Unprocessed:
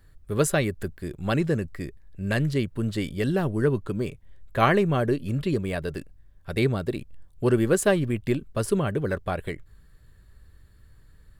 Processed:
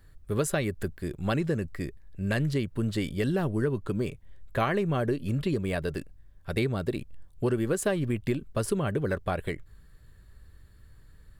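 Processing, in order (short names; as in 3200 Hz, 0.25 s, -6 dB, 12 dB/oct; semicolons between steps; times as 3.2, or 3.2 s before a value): compressor 6:1, threshold -23 dBFS, peak gain reduction 8.5 dB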